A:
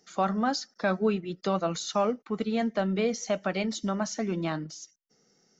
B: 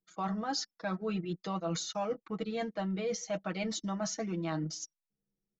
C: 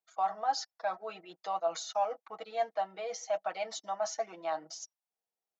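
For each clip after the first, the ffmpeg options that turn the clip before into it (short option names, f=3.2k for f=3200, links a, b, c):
-af "anlmdn=0.0251,aecho=1:1:6.2:0.81,areverse,acompressor=threshold=-32dB:ratio=6,areverse"
-af "highpass=f=720:t=q:w=4.2,volume=-3dB"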